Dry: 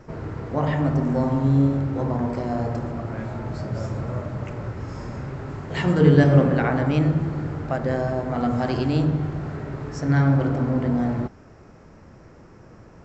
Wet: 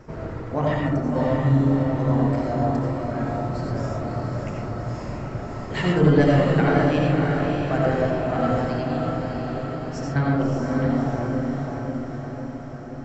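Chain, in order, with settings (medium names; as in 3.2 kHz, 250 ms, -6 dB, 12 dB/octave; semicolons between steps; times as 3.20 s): reverb removal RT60 2 s; 8.61–10.16 s: compression 3:1, threshold -34 dBFS, peak gain reduction 13.5 dB; saturation -11 dBFS, distortion -17 dB; echo that smears into a reverb 598 ms, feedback 62%, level -4 dB; reverberation RT60 0.70 s, pre-delay 45 ms, DRR -1 dB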